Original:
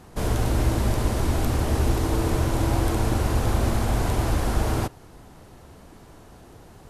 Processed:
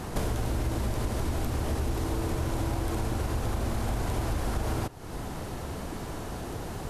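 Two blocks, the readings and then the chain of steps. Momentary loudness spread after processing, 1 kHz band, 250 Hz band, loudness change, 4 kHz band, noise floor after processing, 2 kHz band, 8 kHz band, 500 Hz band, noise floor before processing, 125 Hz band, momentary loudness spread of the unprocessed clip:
7 LU, -6.0 dB, -6.0 dB, -7.5 dB, -5.5 dB, -37 dBFS, -5.5 dB, -5.5 dB, -6.0 dB, -48 dBFS, -6.5 dB, 2 LU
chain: in parallel at -0.5 dB: peak limiter -18.5 dBFS, peak gain reduction 8 dB; on the sum: compression 5:1, threshold -34 dBFS, peak gain reduction 18.5 dB; trim +5.5 dB

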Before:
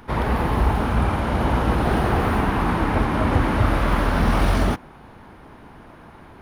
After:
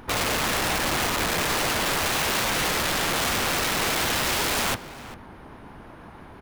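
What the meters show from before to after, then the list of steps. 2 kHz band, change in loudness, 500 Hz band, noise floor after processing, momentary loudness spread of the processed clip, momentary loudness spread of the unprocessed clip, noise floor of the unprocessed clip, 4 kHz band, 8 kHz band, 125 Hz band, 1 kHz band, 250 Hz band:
+3.0 dB, -2.0 dB, -4.5 dB, -45 dBFS, 2 LU, 2 LU, -45 dBFS, +11.0 dB, +17.0 dB, -13.5 dB, -4.0 dB, -9.5 dB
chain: integer overflow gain 20 dB; echo from a far wall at 68 m, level -15 dB; vibrato 6 Hz 50 cents

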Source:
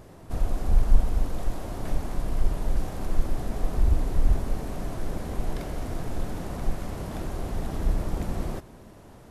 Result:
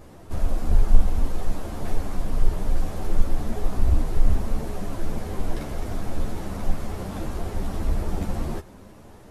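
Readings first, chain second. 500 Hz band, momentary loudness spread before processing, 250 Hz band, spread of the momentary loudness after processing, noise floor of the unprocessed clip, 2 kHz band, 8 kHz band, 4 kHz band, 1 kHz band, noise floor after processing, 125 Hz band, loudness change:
+1.5 dB, 9 LU, +2.5 dB, 8 LU, -48 dBFS, +2.0 dB, no reading, +2.0 dB, +2.0 dB, -46 dBFS, +2.0 dB, +1.5 dB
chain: three-phase chorus; trim +5 dB

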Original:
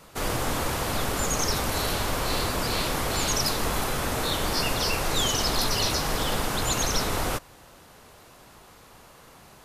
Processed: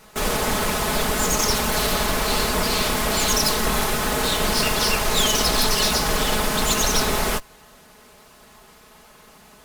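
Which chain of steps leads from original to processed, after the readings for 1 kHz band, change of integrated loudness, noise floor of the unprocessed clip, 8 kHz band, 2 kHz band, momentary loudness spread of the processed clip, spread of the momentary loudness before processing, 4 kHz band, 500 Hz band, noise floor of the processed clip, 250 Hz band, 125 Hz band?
+5.0 dB, +5.5 dB, -52 dBFS, +6.0 dB, +6.5 dB, 4 LU, 4 LU, +5.5 dB, +5.5 dB, -50 dBFS, +5.5 dB, +1.5 dB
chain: comb filter that takes the minimum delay 4.7 ms; in parallel at -6 dB: word length cut 6-bit, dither none; on the sum: trim +3.5 dB

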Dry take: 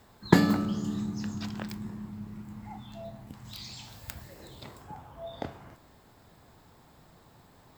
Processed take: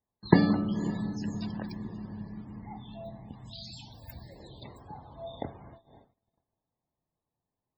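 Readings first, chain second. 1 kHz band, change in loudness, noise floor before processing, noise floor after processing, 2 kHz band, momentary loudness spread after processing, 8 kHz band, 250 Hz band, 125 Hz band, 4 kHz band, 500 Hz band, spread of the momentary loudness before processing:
-1.5 dB, +1.0 dB, -59 dBFS, under -85 dBFS, -3.5 dB, 23 LU, -10.5 dB, 0.0 dB, 0.0 dB, -3.5 dB, 0.0 dB, 23 LU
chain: echo that smears into a reverb 548 ms, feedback 48%, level -14 dB; gate -50 dBFS, range -31 dB; peaking EQ 1.4 kHz -6 dB 0.49 oct; loudest bins only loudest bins 64

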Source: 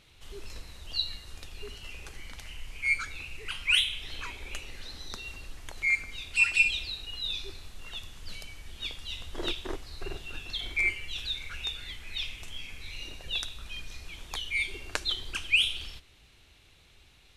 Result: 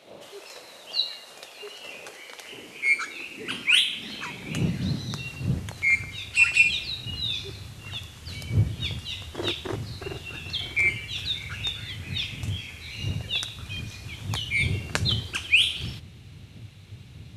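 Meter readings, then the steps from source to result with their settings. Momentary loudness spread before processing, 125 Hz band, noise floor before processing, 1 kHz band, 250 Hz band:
21 LU, +17.5 dB, -59 dBFS, +5.0 dB, +14.0 dB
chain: wind noise 110 Hz -40 dBFS; high-pass sweep 580 Hz -> 100 Hz, 1.81–5.76 s; trim +4.5 dB

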